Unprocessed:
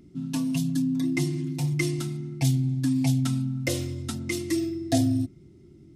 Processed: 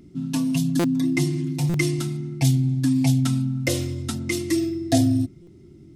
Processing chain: buffer glitch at 0.79/1.69/5.42 s, samples 256, times 8; trim +4 dB

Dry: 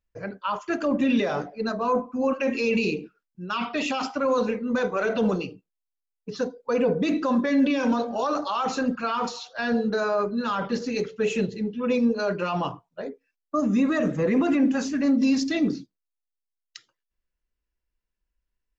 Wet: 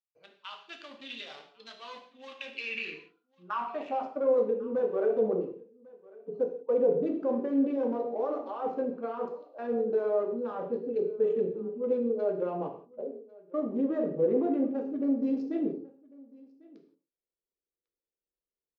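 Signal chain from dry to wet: local Wiener filter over 25 samples; band-pass sweep 3.6 kHz -> 460 Hz, 2.34–4.27 s; on a send: delay 1098 ms -24 dB; on the sum: gated-style reverb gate 200 ms falling, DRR 3.5 dB

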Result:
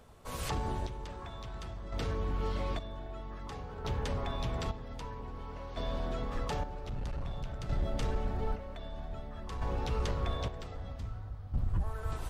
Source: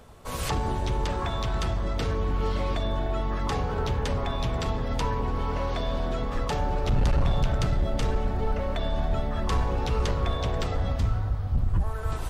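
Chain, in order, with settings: square tremolo 0.52 Hz, depth 60%, duty 45%; trim -7 dB

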